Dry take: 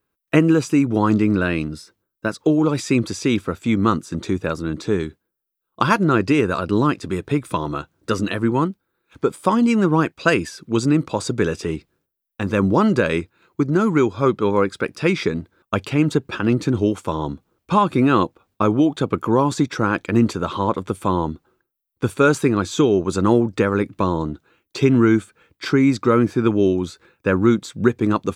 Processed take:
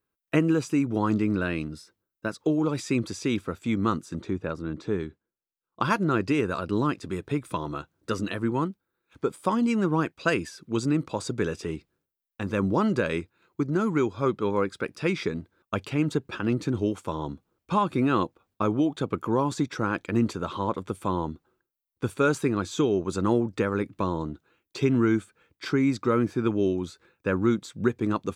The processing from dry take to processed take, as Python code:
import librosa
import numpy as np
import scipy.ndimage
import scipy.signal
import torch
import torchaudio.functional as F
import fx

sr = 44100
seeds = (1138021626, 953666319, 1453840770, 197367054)

y = fx.lowpass(x, sr, hz=fx.line((4.21, 2000.0), (5.83, 3600.0)), slope=6, at=(4.21, 5.83), fade=0.02)
y = y * 10.0 ** (-7.5 / 20.0)